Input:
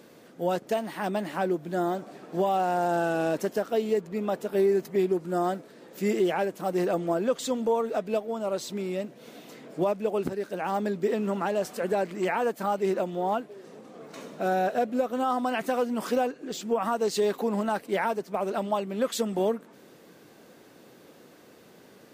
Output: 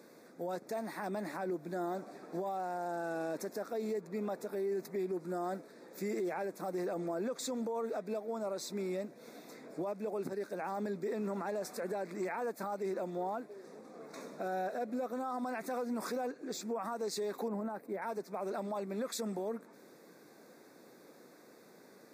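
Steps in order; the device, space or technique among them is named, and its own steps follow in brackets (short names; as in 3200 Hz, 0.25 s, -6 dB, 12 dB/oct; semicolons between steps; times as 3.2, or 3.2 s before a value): PA system with an anti-feedback notch (HPF 180 Hz 12 dB/oct; Butterworth band-stop 3000 Hz, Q 2.5; limiter -25 dBFS, peak gain reduction 10 dB); 17.48–18.02 bell 5300 Hz -14 dB 2.8 oct; gain -4.5 dB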